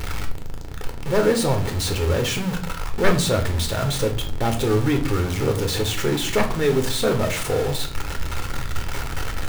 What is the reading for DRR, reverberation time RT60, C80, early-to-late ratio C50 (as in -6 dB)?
4.0 dB, 0.45 s, 16.5 dB, 11.5 dB